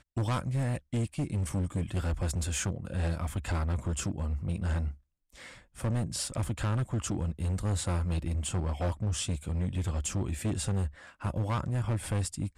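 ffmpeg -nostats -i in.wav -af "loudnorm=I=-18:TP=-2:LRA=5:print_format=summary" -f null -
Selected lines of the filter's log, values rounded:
Input Integrated:    -32.5 LUFS
Input True Peak:     -24.3 dBTP
Input LRA:             1.6 LU
Input Threshold:     -42.7 LUFS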